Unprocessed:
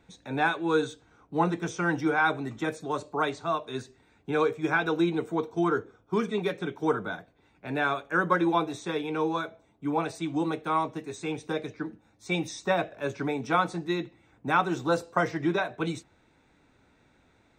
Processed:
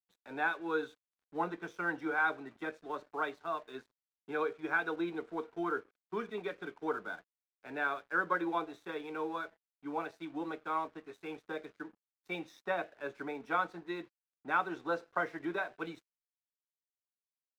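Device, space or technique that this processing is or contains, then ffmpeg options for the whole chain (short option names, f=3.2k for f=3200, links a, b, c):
pocket radio on a weak battery: -af "highpass=280,lowpass=3.4k,aeval=exprs='sgn(val(0))*max(abs(val(0))-0.00237,0)':c=same,equalizer=f=1.5k:t=o:w=0.48:g=4.5,volume=-8.5dB"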